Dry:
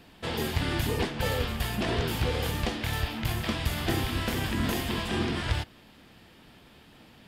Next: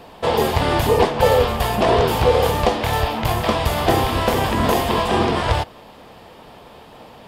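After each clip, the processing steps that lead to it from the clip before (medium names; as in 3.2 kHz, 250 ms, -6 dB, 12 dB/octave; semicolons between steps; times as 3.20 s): high-order bell 700 Hz +10.5 dB; trim +7.5 dB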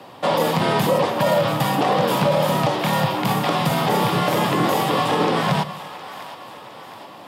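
frequency shift +81 Hz; peak limiter -9.5 dBFS, peak gain reduction 7.5 dB; two-band feedback delay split 610 Hz, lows 85 ms, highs 713 ms, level -14 dB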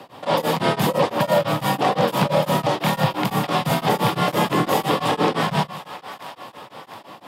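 tremolo of two beating tones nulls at 5.9 Hz; trim +2 dB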